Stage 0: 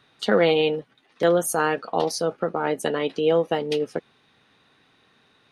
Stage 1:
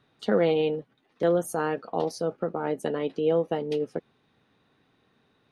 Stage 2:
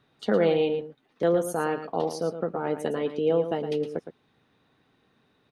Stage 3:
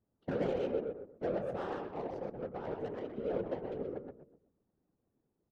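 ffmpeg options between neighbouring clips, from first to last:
-af "tiltshelf=f=920:g=5,volume=-6.5dB"
-af "aecho=1:1:113:0.316"
-filter_complex "[0:a]asplit=2[a][b];[b]adelay=126,lowpass=f=2.3k:p=1,volume=-4dB,asplit=2[c][d];[d]adelay=126,lowpass=f=2.3k:p=1,volume=0.4,asplit=2[e][f];[f]adelay=126,lowpass=f=2.3k:p=1,volume=0.4,asplit=2[g][h];[h]adelay=126,lowpass=f=2.3k:p=1,volume=0.4,asplit=2[i][j];[j]adelay=126,lowpass=f=2.3k:p=1,volume=0.4[k];[a][c][e][g][i][k]amix=inputs=6:normalize=0,adynamicsmooth=sensitivity=1.5:basefreq=620,afftfilt=real='hypot(re,im)*cos(2*PI*random(0))':imag='hypot(re,im)*sin(2*PI*random(1))':win_size=512:overlap=0.75,volume=-6.5dB"

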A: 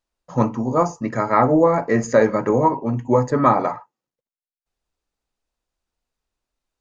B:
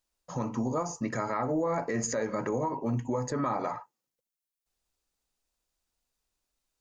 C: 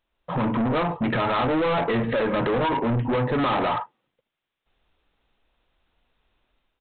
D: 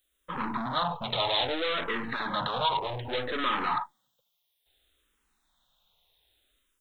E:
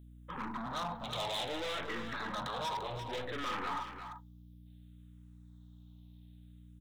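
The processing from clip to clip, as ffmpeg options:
-af "acompressor=threshold=-19dB:ratio=6,highshelf=f=4.2k:g=11,alimiter=limit=-17dB:level=0:latency=1:release=78,volume=-4dB"
-af "dynaudnorm=f=120:g=5:m=7.5dB,aresample=8000,asoftclip=type=tanh:threshold=-29.5dB,aresample=44100,volume=9dB"
-filter_complex "[0:a]acrossover=split=680[a][b];[a]aeval=exprs='(tanh(50.1*val(0)+0.75)-tanh(0.75))/50.1':c=same[c];[b]aexciter=amount=7.7:drive=5.4:freq=3.7k[d];[c][d]amix=inputs=2:normalize=0,asplit=2[e][f];[f]afreqshift=-0.62[g];[e][g]amix=inputs=2:normalize=1"
-af "aeval=exprs='val(0)+0.00562*(sin(2*PI*60*n/s)+sin(2*PI*2*60*n/s)/2+sin(2*PI*3*60*n/s)/3+sin(2*PI*4*60*n/s)/4+sin(2*PI*5*60*n/s)/5)':c=same,asoftclip=type=hard:threshold=-25.5dB,aecho=1:1:344:0.355,volume=-7.5dB"

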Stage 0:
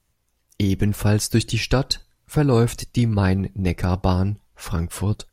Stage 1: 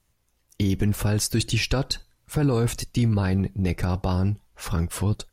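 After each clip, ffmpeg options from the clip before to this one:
-af "alimiter=limit=-13dB:level=0:latency=1:release=13"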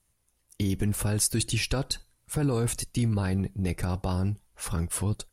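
-af "equalizer=f=9.9k:w=1.9:g=11,volume=-4.5dB"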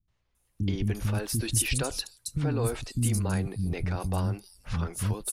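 -filter_complex "[0:a]acrossover=split=270|5200[a][b][c];[b]adelay=80[d];[c]adelay=350[e];[a][d][e]amix=inputs=3:normalize=0"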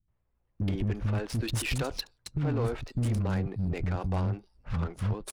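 -af "volume=23.5dB,asoftclip=hard,volume=-23.5dB,adynamicsmooth=sensitivity=7.5:basefreq=1.5k"

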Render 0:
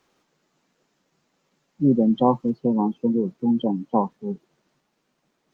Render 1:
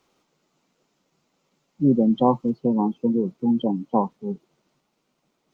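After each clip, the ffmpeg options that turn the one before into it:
-af "equalizer=f=1.7k:t=o:w=0.24:g=-8.5"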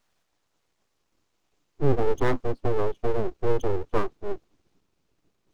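-af "asubboost=boost=10.5:cutoff=140,aeval=exprs='abs(val(0))':c=same,volume=-3dB"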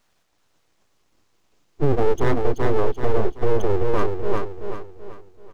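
-filter_complex "[0:a]asplit=2[a][b];[b]aecho=0:1:382|764|1146|1528|1910:0.501|0.19|0.0724|0.0275|0.0105[c];[a][c]amix=inputs=2:normalize=0,alimiter=level_in=12.5dB:limit=-1dB:release=50:level=0:latency=1,volume=-6.5dB"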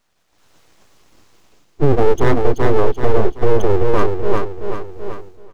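-af "dynaudnorm=f=150:g=5:m=14.5dB,volume=-1dB"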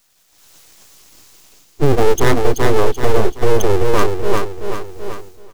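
-af "crystalizer=i=4.5:c=0"

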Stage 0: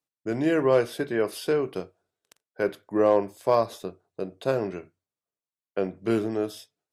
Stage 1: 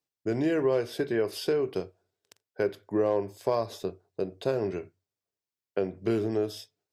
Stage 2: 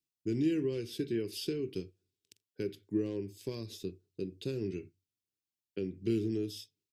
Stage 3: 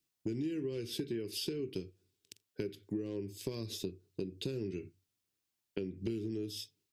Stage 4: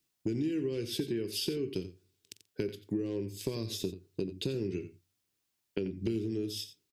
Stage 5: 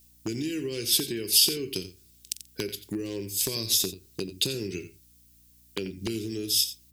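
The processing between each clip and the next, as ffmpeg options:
-af "equalizer=f=100:t=o:w=0.33:g=9,equalizer=f=400:t=o:w=0.33:g=5,equalizer=f=1.25k:t=o:w=0.33:g=-4,equalizer=f=5k:t=o:w=0.33:g=4,equalizer=f=10k:t=o:w=0.33:g=-5,acompressor=threshold=-25dB:ratio=2.5"
-af "firequalizer=gain_entry='entry(330,0);entry(650,-28);entry(2600,-1)':delay=0.05:min_phase=1,volume=-2dB"
-af "acompressor=threshold=-42dB:ratio=6,volume=7dB"
-af "aecho=1:1:88:0.211,volume=4dB"
-af "aeval=exprs='val(0)+0.000794*(sin(2*PI*60*n/s)+sin(2*PI*2*60*n/s)/2+sin(2*PI*3*60*n/s)/3+sin(2*PI*4*60*n/s)/4+sin(2*PI*5*60*n/s)/5)':c=same,aeval=exprs='0.075*(abs(mod(val(0)/0.075+3,4)-2)-1)':c=same,crystalizer=i=8:c=0"

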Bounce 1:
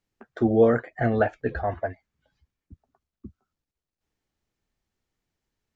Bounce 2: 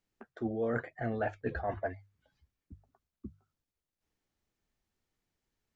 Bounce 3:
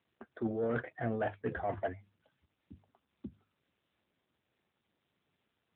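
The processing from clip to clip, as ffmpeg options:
-af "bandreject=f=50:t=h:w=6,bandreject=f=100:t=h:w=6,bandreject=f=150:t=h:w=6,areverse,acompressor=threshold=-28dB:ratio=6,areverse,volume=-2.5dB"
-af "aeval=exprs='0.106*sin(PI/2*1.58*val(0)/0.106)':c=same,volume=-6.5dB" -ar 8000 -c:a libopencore_amrnb -b:a 10200

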